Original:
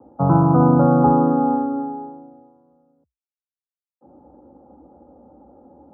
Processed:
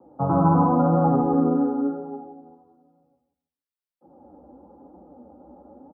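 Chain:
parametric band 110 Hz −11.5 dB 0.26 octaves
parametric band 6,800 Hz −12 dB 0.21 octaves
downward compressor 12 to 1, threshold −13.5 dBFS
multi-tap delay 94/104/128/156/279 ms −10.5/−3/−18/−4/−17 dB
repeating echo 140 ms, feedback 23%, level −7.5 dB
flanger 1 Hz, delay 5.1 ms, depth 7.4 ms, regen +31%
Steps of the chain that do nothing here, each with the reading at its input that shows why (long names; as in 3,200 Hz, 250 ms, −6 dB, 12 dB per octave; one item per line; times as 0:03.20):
parametric band 6,800 Hz: nothing at its input above 1,400 Hz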